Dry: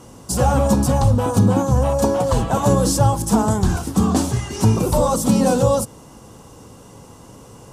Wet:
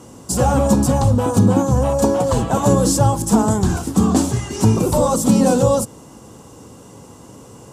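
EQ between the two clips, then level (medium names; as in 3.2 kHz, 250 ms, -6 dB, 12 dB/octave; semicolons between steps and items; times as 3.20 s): high-pass 54 Hz; peaking EQ 300 Hz +3.5 dB 1.4 oct; peaking EQ 7.4 kHz +4.5 dB 0.3 oct; 0.0 dB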